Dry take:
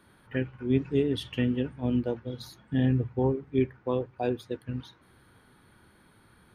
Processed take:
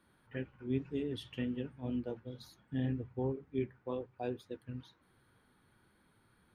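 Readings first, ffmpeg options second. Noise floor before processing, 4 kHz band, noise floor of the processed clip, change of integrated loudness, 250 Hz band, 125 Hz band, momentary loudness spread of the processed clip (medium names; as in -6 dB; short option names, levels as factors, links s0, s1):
-61 dBFS, -10.0 dB, -71 dBFS, -10.0 dB, -10.0 dB, -11.0 dB, 10 LU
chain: -af "flanger=delay=3.6:depth=4.6:regen=-62:speed=2:shape=sinusoidal,volume=0.501"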